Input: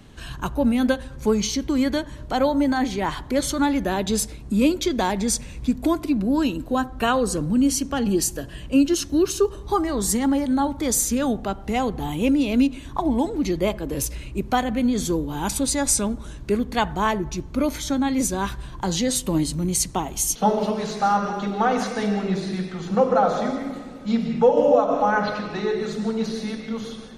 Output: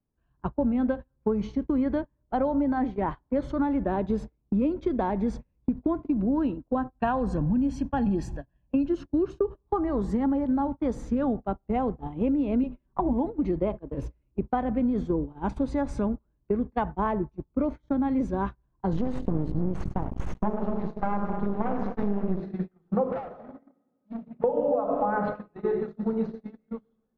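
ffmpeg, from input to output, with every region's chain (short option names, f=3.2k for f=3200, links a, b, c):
-filter_complex "[0:a]asettb=1/sr,asplit=3[a][b][c];[a]atrim=end=6.954[d];[b]atrim=start=6.95:end=8.88,asetpts=PTS-STARTPTS,afade=t=in:d=0.004:c=qsin,afade=t=out:st=1.926:d=0.004:c=qsin,highshelf=f=2.9k:g=5.5,aecho=1:1:1.2:0.55,atrim=end_sample=85113[e];[c]atrim=start=8.876[f];[d][e]acrossfade=d=0.004:c1=hsin:c2=qsin[g];[g][f]acrossfade=d=0.004:c1=qsin:c2=hsin,asettb=1/sr,asplit=3[h][i][j];[h]atrim=end=12.634[k];[i]atrim=start=12.63:end=13.13,asetpts=PTS-STARTPTS,afade=t=in:d=0.004:c=qsin,afade=t=out:st=0.496:d=0.004:c=qsin,bass=f=250:g=1,treble=f=4k:g=-6,aecho=1:1:5.2:0.84,atrim=end_sample=22050[l];[j]atrim=start=13.126[m];[k][l]acrossfade=d=0.004:c1=hsin:c2=qsin[n];[n][m]acrossfade=d=0.004:c1=qsin:c2=hsin,asettb=1/sr,asplit=3[o][p][q];[o]atrim=end=18.934[r];[p]atrim=start=18.93:end=22.4,asetpts=PTS-STARTPTS,afade=t=in:d=0.004:c=qsin,afade=t=out:st=3.466:d=0.004:c=qsin,bass=f=250:g=11,treble=f=4k:g=2,aecho=1:1:103|206|309|412:0.237|0.0996|0.0418|0.0176,atrim=end_sample=153027,aeval=exprs='max(val(0),0)':c=same[s];[q]atrim=start=22.396[t];[r][s]acrossfade=d=0.004:c1=hsin:c2=qsin[u];[u][t]acrossfade=d=0.004:c1=qsin:c2=hsin,asettb=1/sr,asplit=3[v][w][x];[v]atrim=end=23.124[y];[w]atrim=start=23.12:end=24.44,asetpts=PTS-STARTPTS,afade=t=in:d=0.004:c=qsin,afade=t=out:st=1.316:d=0.004:c=qsin,highpass=120,lowpass=7.6k,asoftclip=type=hard:threshold=-24.5dB,bandreject=f=50:t=h:w=6,bandreject=f=100:t=h:w=6,bandreject=f=150:t=h:w=6,bandreject=f=200:t=h:w=6[z];[x]atrim=start=24.436[aa];[y][z]acrossfade=d=0.004:c1=hsin:c2=qsin[ab];[ab][aa]acrossfade=d=0.004:c1=qsin:c2=hsin,agate=range=-35dB:threshold=-25dB:ratio=16:detection=peak,lowpass=1.1k,acompressor=threshold=-22dB:ratio=5"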